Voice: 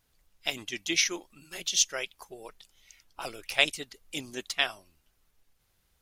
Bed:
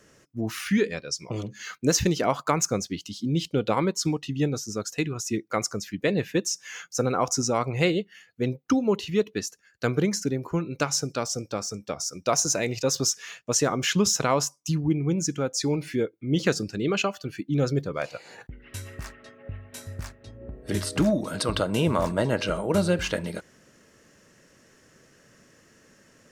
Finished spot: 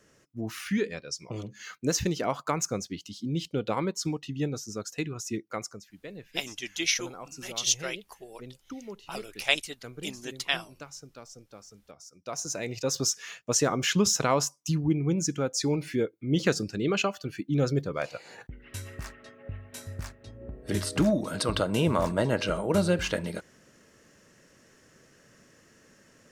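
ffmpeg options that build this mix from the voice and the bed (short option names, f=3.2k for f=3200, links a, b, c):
-filter_complex "[0:a]adelay=5900,volume=-1dB[a];[1:a]volume=12dB,afade=t=out:st=5.37:d=0.52:silence=0.211349,afade=t=in:st=12.16:d=1.04:silence=0.141254[b];[a][b]amix=inputs=2:normalize=0"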